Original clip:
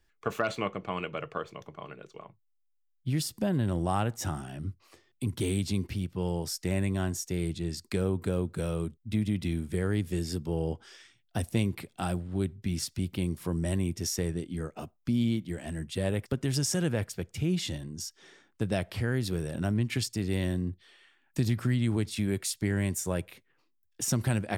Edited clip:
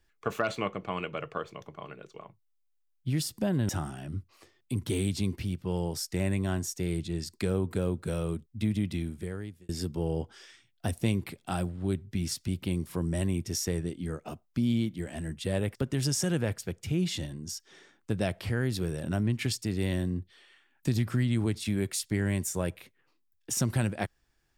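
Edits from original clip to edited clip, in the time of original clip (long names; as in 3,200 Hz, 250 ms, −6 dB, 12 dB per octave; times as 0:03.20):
0:03.69–0:04.20: remove
0:09.33–0:10.20: fade out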